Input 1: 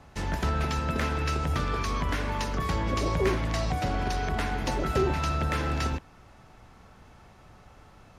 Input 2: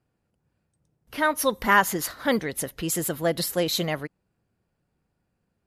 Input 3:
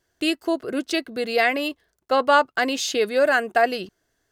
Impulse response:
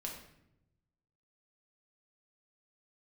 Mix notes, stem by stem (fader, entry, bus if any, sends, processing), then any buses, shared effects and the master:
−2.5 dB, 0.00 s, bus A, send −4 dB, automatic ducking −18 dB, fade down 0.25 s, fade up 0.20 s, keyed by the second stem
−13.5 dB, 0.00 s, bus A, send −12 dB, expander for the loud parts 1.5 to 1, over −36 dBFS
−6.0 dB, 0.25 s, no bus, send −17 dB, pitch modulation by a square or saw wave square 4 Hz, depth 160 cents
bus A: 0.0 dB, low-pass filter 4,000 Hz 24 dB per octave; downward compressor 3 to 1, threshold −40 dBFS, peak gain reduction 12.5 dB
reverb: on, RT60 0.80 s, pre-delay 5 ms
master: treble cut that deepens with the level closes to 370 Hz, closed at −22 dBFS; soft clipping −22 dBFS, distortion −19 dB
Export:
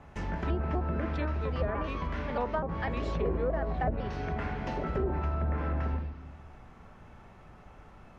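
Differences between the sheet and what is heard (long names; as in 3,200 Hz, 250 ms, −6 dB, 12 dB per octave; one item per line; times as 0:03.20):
stem 3 −6.0 dB → −13.5 dB
master: missing soft clipping −22 dBFS, distortion −19 dB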